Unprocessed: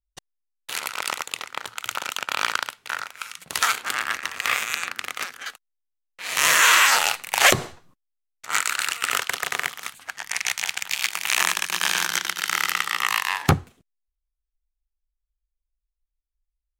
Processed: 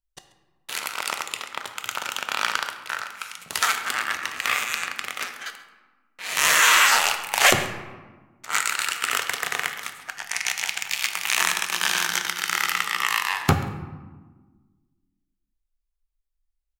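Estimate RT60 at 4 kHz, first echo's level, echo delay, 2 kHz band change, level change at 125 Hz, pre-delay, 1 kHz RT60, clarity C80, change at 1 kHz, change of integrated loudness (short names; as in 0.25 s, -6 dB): 0.70 s, -19.0 dB, 0.135 s, -0.5 dB, -0.5 dB, 3 ms, 1.3 s, 10.5 dB, 0.0 dB, -0.5 dB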